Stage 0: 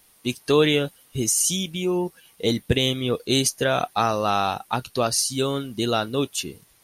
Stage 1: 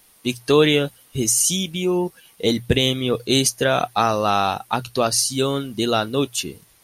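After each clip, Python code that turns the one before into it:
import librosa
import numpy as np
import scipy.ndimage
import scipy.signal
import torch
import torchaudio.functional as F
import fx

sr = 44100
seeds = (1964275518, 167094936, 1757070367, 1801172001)

y = fx.hum_notches(x, sr, base_hz=60, count=2)
y = y * 10.0 ** (3.0 / 20.0)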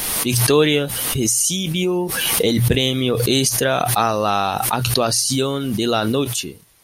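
y = fx.pre_swell(x, sr, db_per_s=22.0)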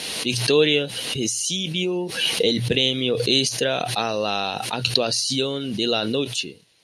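y = fx.cabinet(x, sr, low_hz=130.0, low_slope=12, high_hz=9100.0, hz=(480.0, 850.0, 1200.0, 2800.0, 4100.0, 8000.0), db=(4, -3, -8, 7, 8, -6))
y = y * 10.0 ** (-5.0 / 20.0)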